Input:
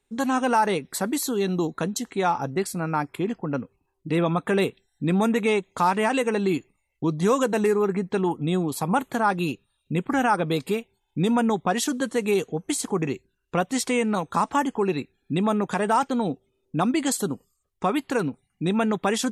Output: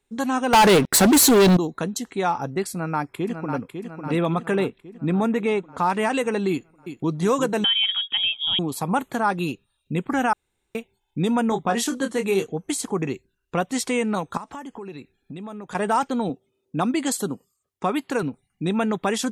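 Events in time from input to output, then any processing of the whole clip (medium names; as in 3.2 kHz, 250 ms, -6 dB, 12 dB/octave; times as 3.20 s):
0.53–1.57 s: waveshaping leveller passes 5
2.72–3.61 s: echo throw 550 ms, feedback 60%, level -7 dB
4.55–5.90 s: treble shelf 3.2 kHz -9.5 dB
6.50–7.13 s: echo throw 360 ms, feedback 55%, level -9.5 dB
7.64–8.59 s: frequency inversion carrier 3.5 kHz
10.33–10.75 s: room tone
11.49–12.49 s: doubling 26 ms -7 dB
14.37–15.75 s: compression 4:1, threshold -35 dBFS
16.29–18.23 s: high-pass 110 Hz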